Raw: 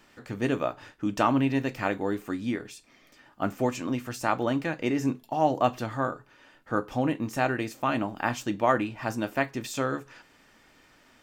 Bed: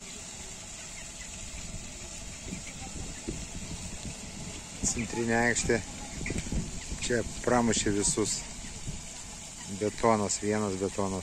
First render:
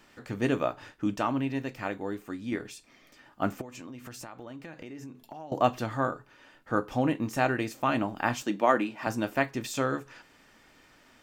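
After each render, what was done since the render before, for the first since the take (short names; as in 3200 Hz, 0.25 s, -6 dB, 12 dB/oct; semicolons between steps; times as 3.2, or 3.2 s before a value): 1.16–2.52 gain -5.5 dB; 3.61–5.52 compressor 12:1, threshold -39 dBFS; 8.42–9.07 HPF 180 Hz 24 dB/oct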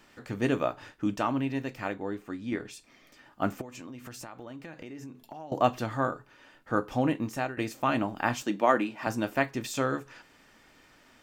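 1.92–2.72 high shelf 5700 Hz -> 10000 Hz -10 dB; 7.08–7.57 fade out equal-power, to -16 dB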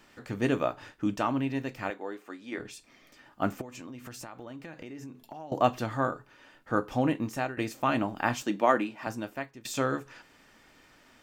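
1.9–2.58 HPF 400 Hz; 8.67–9.65 fade out, to -19.5 dB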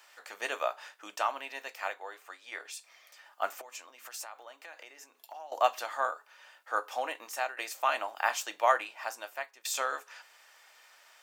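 HPF 620 Hz 24 dB/oct; high shelf 5100 Hz +6.5 dB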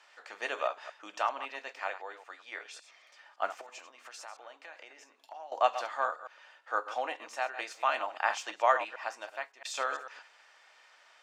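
reverse delay 0.112 s, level -11.5 dB; air absorption 89 m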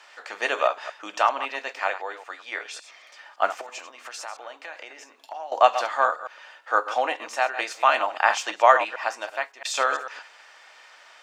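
gain +10 dB; limiter -3 dBFS, peak gain reduction 1.5 dB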